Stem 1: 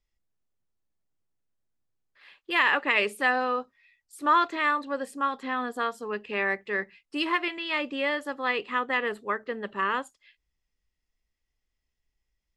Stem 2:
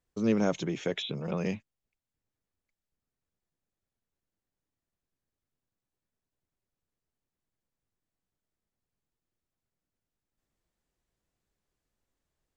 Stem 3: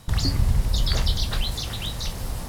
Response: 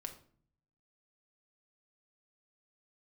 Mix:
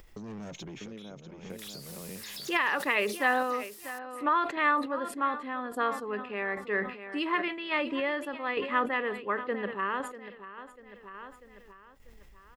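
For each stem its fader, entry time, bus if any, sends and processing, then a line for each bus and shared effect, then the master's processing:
+1.5 dB, 0.00 s, no bus, no send, echo send -15.5 dB, bell 6800 Hz -11 dB 1.9 oct
-9.0 dB, 0.00 s, bus A, no send, echo send -6.5 dB, dry
-2.0 dB, 1.50 s, bus A, no send, no echo send, differentiator; compressor, threshold -38 dBFS, peak gain reduction 9.5 dB
bus A: 0.0 dB, soft clip -39.5 dBFS, distortion -7 dB; compressor, threshold -47 dBFS, peak gain reduction 6 dB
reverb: off
echo: feedback echo 0.643 s, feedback 25%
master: upward compressor, threshold -32 dBFS; random-step tremolo; sustainer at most 100 dB/s

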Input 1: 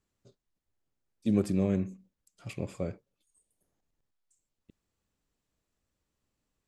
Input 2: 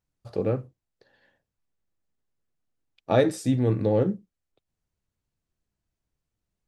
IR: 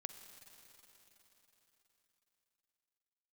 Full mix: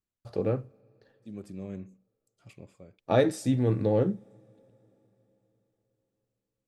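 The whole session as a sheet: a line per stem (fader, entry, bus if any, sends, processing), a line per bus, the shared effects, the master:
-10.5 dB, 0.00 s, no send, auto duck -9 dB, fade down 0.50 s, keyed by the second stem
-3.0 dB, 0.00 s, send -15.5 dB, gate with hold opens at -52 dBFS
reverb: on, RT60 4.2 s, pre-delay 41 ms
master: dry

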